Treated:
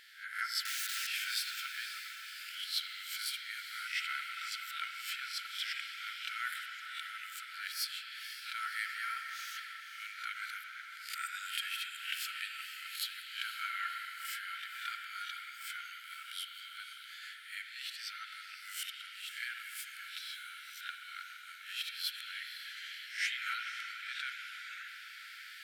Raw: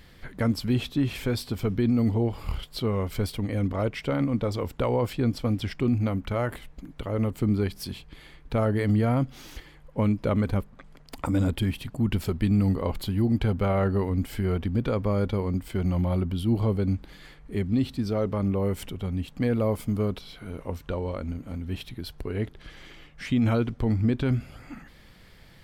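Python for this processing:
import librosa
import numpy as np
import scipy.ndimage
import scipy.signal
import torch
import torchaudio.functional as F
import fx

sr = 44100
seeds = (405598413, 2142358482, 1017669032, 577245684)

y = fx.spec_swells(x, sr, rise_s=0.38)
y = fx.recorder_agc(y, sr, target_db=-18.5, rise_db_per_s=5.4, max_gain_db=30)
y = fx.overflow_wrap(y, sr, gain_db=31.0, at=(0.65, 1.07))
y = fx.brickwall_highpass(y, sr, low_hz=1300.0)
y = fx.echo_diffused(y, sr, ms=521, feedback_pct=63, wet_db=-11.0)
y = fx.rev_spring(y, sr, rt60_s=3.5, pass_ms=(43, 51, 56), chirp_ms=30, drr_db=3.5)
y = y * 10.0 ** (-1.5 / 20.0)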